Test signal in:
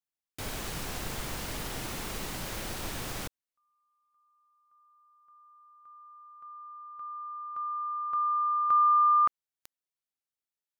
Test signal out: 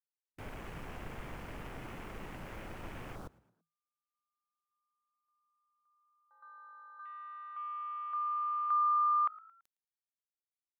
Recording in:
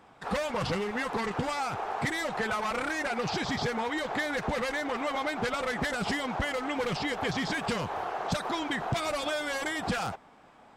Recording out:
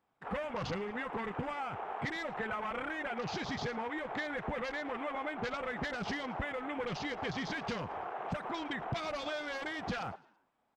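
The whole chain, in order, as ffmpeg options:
ffmpeg -i in.wav -filter_complex "[0:a]afwtdn=0.00891,asplit=4[link_01][link_02][link_03][link_04];[link_02]adelay=111,afreqshift=53,volume=-23dB[link_05];[link_03]adelay=222,afreqshift=106,volume=-29.4dB[link_06];[link_04]adelay=333,afreqshift=159,volume=-35.8dB[link_07];[link_01][link_05][link_06][link_07]amix=inputs=4:normalize=0,volume=-6.5dB" out.wav

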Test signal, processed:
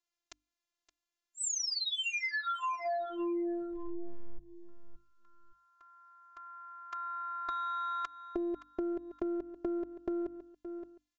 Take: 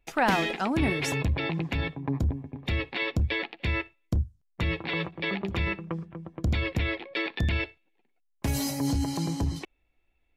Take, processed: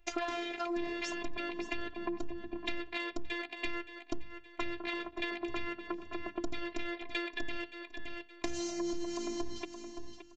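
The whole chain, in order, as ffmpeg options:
ffmpeg -i in.wav -af "aresample=16000,aeval=exprs='0.251*sin(PI/2*1.78*val(0)/0.251)':channel_layout=same,aresample=44100,afftfilt=real='hypot(re,im)*cos(PI*b)':imag='0':win_size=512:overlap=0.75,bandreject=frequency=50:width_type=h:width=6,bandreject=frequency=100:width_type=h:width=6,bandreject=frequency=150:width_type=h:width=6,bandreject=frequency=200:width_type=h:width=6,bandreject=frequency=250:width_type=h:width=6,bandreject=frequency=300:width_type=h:width=6,aecho=1:1:570|1140:0.141|0.0268,acompressor=threshold=-33dB:ratio=6" out.wav

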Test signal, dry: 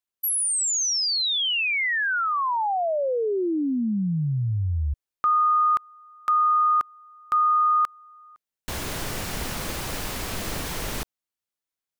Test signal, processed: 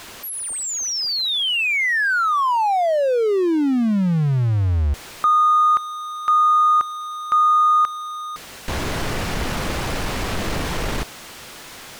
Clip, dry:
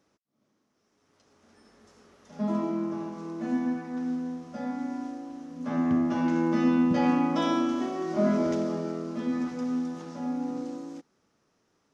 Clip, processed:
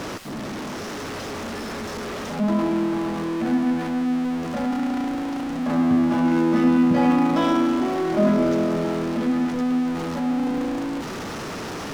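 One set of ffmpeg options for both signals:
ffmpeg -i in.wav -af "aeval=exprs='val(0)+0.5*0.0398*sgn(val(0))':channel_layout=same,aemphasis=mode=reproduction:type=50kf,volume=4dB" out.wav

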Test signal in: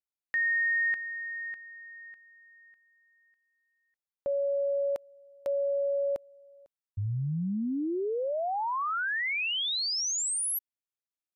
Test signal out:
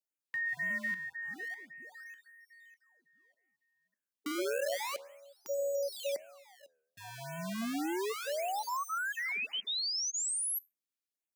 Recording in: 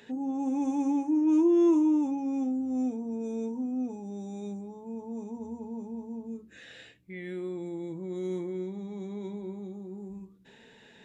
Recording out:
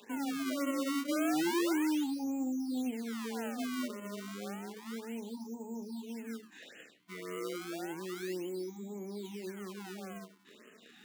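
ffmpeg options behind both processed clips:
ffmpeg -i in.wav -filter_complex "[0:a]acrossover=split=1400[link_01][link_02];[link_01]acrusher=samples=30:mix=1:aa=0.000001:lfo=1:lforange=48:lforate=0.31[link_03];[link_03][link_02]amix=inputs=2:normalize=0,asoftclip=type=hard:threshold=-24dB,asplit=2[link_04][link_05];[link_05]alimiter=level_in=11dB:limit=-24dB:level=0:latency=1:release=140,volume=-11dB,volume=2.5dB[link_06];[link_04][link_06]amix=inputs=2:normalize=0,highpass=frequency=210:width=0.5412,highpass=frequency=210:width=1.3066,flanger=delay=8.6:depth=5.2:regen=-90:speed=1.1:shape=triangular,afftfilt=real='re*(1-between(b*sr/1024,480*pow(4700/480,0.5+0.5*sin(2*PI*1.8*pts/sr))/1.41,480*pow(4700/480,0.5+0.5*sin(2*PI*1.8*pts/sr))*1.41))':imag='im*(1-between(b*sr/1024,480*pow(4700/480,0.5+0.5*sin(2*PI*1.8*pts/sr))/1.41,480*pow(4700/480,0.5+0.5*sin(2*PI*1.8*pts/sr))*1.41))':win_size=1024:overlap=0.75,volume=-3dB" out.wav

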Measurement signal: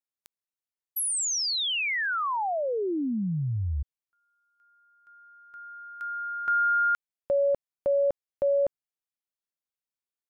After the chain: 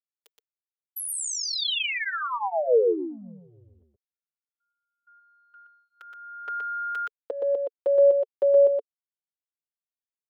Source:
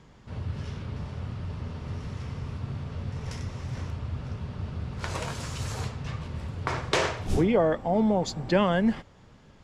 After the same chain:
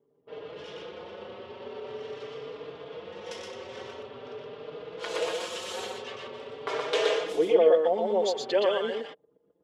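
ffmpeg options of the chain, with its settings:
ffmpeg -i in.wav -filter_complex "[0:a]anlmdn=0.0158,equalizer=frequency=3200:width=2.2:gain=10,acompressor=threshold=-30dB:ratio=2:attack=7:release=23:knee=1:detection=rms,highpass=frequency=450:width_type=q:width=4.9,asplit=2[link_01][link_02];[link_02]aecho=0:1:121:0.708[link_03];[link_01][link_03]amix=inputs=2:normalize=0,asplit=2[link_04][link_05];[link_05]adelay=4.6,afreqshift=0.45[link_06];[link_04][link_06]amix=inputs=2:normalize=1" out.wav

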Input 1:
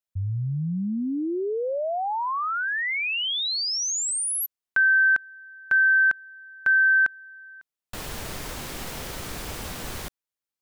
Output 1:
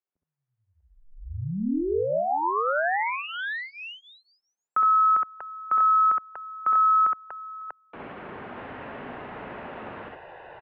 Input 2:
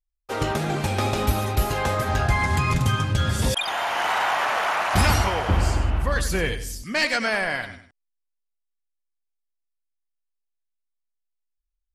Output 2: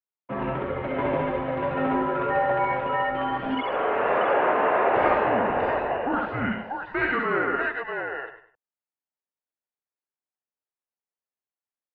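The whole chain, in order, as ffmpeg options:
ffmpeg -i in.wav -filter_complex "[0:a]acrossover=split=310 2100:gain=0.0891 1 0.141[link_01][link_02][link_03];[link_01][link_02][link_03]amix=inputs=3:normalize=0,aecho=1:1:61|67|641|642:0.422|0.668|0.531|0.562,highpass=frequency=390:width_type=q:width=0.5412,highpass=frequency=390:width_type=q:width=1.307,lowpass=frequency=3300:width_type=q:width=0.5176,lowpass=frequency=3300:width_type=q:width=0.7071,lowpass=frequency=3300:width_type=q:width=1.932,afreqshift=-260" out.wav

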